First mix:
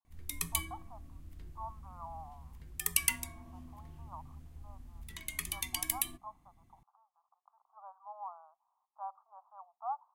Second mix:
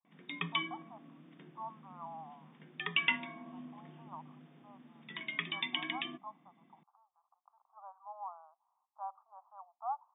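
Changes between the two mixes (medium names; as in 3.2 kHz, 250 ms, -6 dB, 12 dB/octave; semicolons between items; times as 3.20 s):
background +6.5 dB; master: add brick-wall FIR band-pass 150–3700 Hz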